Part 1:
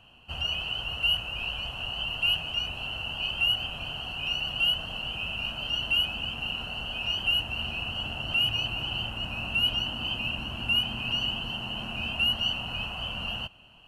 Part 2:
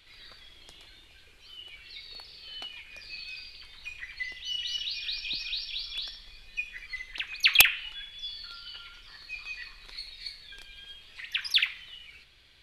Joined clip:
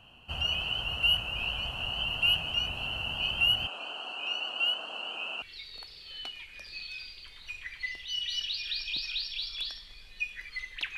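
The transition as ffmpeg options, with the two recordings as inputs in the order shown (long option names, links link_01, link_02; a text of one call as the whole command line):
ffmpeg -i cue0.wav -i cue1.wav -filter_complex "[0:a]asettb=1/sr,asplit=3[link_01][link_02][link_03];[link_01]atrim=end=3.674[link_04];[link_02]atrim=start=3.67:end=5.42,asetpts=PTS-STARTPTS,afade=type=in:duration=0.004:curve=qsin,afade=type=out:start_time=1.746:duration=0.004:curve=qsin,highpass=frequency=320:width=0.5412,highpass=frequency=320:width=1.3066,equalizer=frequency=1300:width_type=q:width=4:gain=3,equalizer=frequency=2000:width_type=q:width=4:gain=-8,equalizer=frequency=3300:width_type=q:width=4:gain=-6,equalizer=frequency=5600:width_type=q:width=4:gain=-5,lowpass=frequency=8700:width=0.5412,lowpass=frequency=8700:width=1.3066[link_05];[link_03]atrim=start=5.416[link_06];[link_04][link_05]acrossfade=duration=0.004:curve1=hsin:curve2=qsin[link_07];[link_07][link_06]acrossfade=duration=0.004:curve1=qsin:curve2=hsin,apad=whole_dur=10.97,atrim=end=10.97,atrim=end=5.422[link_08];[1:a]atrim=start=1.788:end=7.34[link_09];[link_08][link_09]acrossfade=duration=0.004:curve1=hsin:curve2=hsin" out.wav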